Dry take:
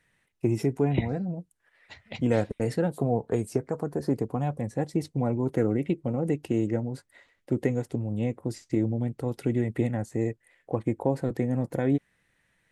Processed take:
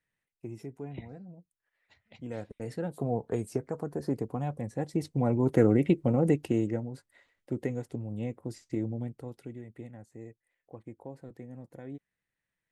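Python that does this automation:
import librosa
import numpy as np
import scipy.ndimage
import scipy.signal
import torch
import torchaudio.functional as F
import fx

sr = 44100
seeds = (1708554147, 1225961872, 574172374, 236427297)

y = fx.gain(x, sr, db=fx.line((2.21, -16.0), (3.11, -4.5), (4.78, -4.5), (5.6, 3.0), (6.26, 3.0), (6.91, -6.5), (9.02, -6.5), (9.6, -18.0)))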